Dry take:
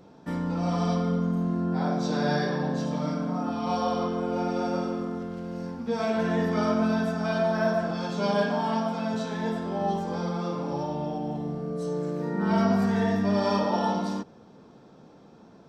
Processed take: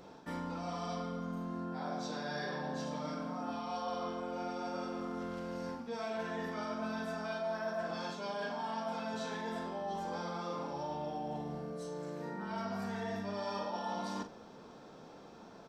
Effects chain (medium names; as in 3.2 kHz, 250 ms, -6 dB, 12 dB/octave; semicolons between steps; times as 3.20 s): peaking EQ 140 Hz -9 dB 3 oct; reverse; compression 6:1, threshold -40 dBFS, peak gain reduction 16 dB; reverse; doubling 42 ms -9.5 dB; trim +3 dB